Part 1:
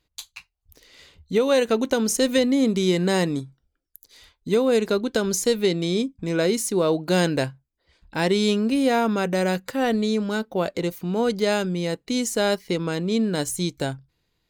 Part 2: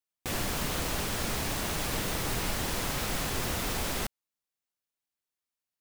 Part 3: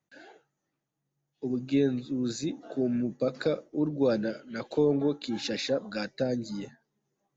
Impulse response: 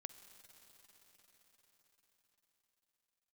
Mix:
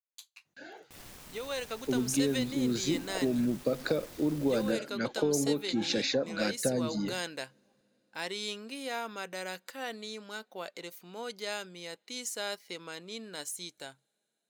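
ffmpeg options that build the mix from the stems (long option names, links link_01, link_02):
-filter_complex "[0:a]highpass=frequency=1400:poles=1,agate=range=-33dB:threshold=-51dB:ratio=3:detection=peak,dynaudnorm=framelen=380:gausssize=7:maxgain=4.5dB,volume=-13dB,asplit=2[link_01][link_02];[link_02]volume=-22dB[link_03];[1:a]acrusher=bits=4:mix=0:aa=0.000001,adelay=650,volume=-20dB[link_04];[2:a]acompressor=threshold=-28dB:ratio=6,adelay=450,volume=2.5dB,asplit=2[link_05][link_06];[link_06]volume=-20dB[link_07];[3:a]atrim=start_sample=2205[link_08];[link_03][link_07]amix=inputs=2:normalize=0[link_09];[link_09][link_08]afir=irnorm=-1:irlink=0[link_10];[link_01][link_04][link_05][link_10]amix=inputs=4:normalize=0"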